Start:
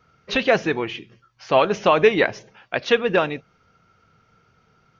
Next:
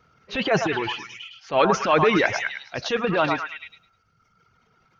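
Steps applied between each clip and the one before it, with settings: reverb removal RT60 1.5 s; transient shaper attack -10 dB, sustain +7 dB; delay with a stepping band-pass 0.105 s, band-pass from 1000 Hz, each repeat 0.7 oct, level -1 dB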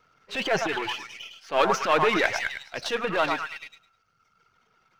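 half-wave gain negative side -7 dB; low shelf 260 Hz -10.5 dB; gain +1 dB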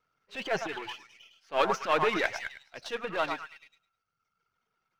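upward expander 1.5:1, over -40 dBFS; gain -3.5 dB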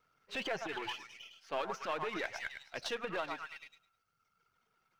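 compressor 6:1, threshold -38 dBFS, peak gain reduction 17 dB; gain +3 dB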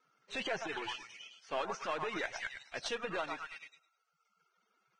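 Vorbis 16 kbps 22050 Hz

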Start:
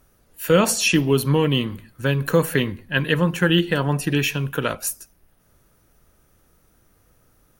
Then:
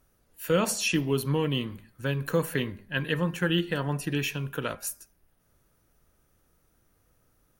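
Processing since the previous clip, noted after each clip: de-hum 201.7 Hz, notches 12; gain -8 dB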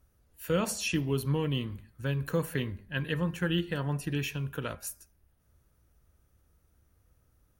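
bell 67 Hz +13.5 dB 1.4 oct; gain -5 dB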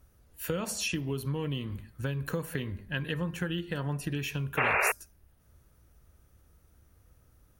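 compressor 6:1, threshold -35 dBFS, peak gain reduction 12 dB; painted sound noise, 4.57–4.92, 370–2800 Hz -32 dBFS; gain +5.5 dB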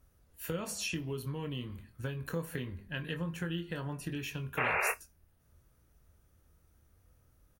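doubler 24 ms -8 dB; on a send at -20.5 dB: reverb, pre-delay 3 ms; on the sum: gain -5 dB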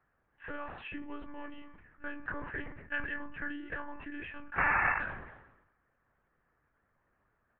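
speaker cabinet 210–2200 Hz, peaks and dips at 220 Hz -9 dB, 320 Hz -3 dB, 510 Hz -6 dB, 1000 Hz +6 dB, 1700 Hz +9 dB; monotone LPC vocoder at 8 kHz 290 Hz; sustainer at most 56 dB/s

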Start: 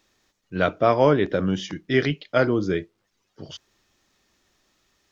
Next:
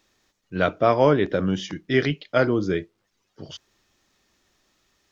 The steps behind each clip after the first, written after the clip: nothing audible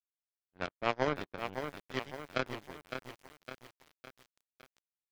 power-law curve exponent 3; lo-fi delay 0.559 s, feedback 55%, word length 7-bit, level -7 dB; gain -6 dB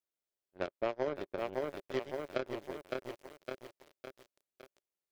compressor 6:1, threshold -35 dBFS, peak gain reduction 11.5 dB; small resonant body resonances 390/560 Hz, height 11 dB, ringing for 25 ms; gain -1 dB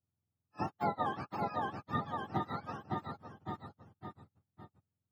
spectrum mirrored in octaves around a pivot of 690 Hz; gain +3.5 dB

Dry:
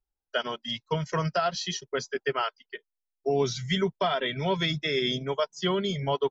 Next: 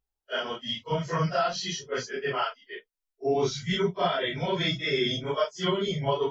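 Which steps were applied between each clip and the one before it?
phase scrambler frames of 0.1 s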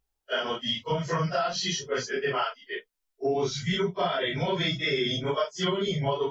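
compressor 3:1, threshold -31 dBFS, peak gain reduction 8.5 dB; gain +5.5 dB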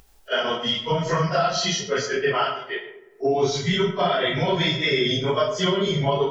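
digital reverb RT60 0.91 s, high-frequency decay 0.45×, pre-delay 25 ms, DRR 7.5 dB; upward compressor, threshold -44 dBFS; gain +5 dB

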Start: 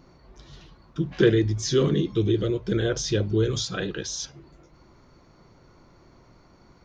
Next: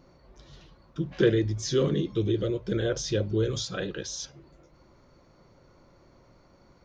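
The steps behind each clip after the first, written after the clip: bell 550 Hz +7.5 dB 0.24 oct; gain -4 dB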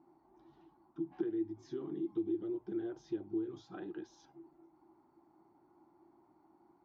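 compressor 6:1, threshold -29 dBFS, peak gain reduction 12.5 dB; double band-pass 520 Hz, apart 1.3 oct; gain +2 dB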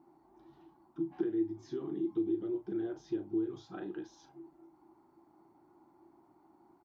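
doubler 36 ms -10.5 dB; gain +2.5 dB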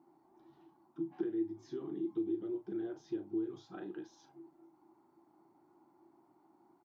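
HPF 110 Hz 12 dB/oct; gain -3 dB

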